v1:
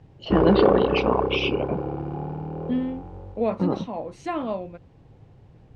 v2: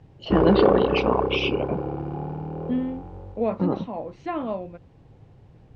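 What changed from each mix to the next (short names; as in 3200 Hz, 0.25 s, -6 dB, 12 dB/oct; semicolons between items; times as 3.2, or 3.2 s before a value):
second voice: add air absorption 190 m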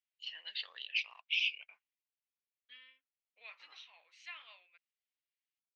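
first voice -4.5 dB; background: muted; master: add Chebyshev high-pass 2300 Hz, order 3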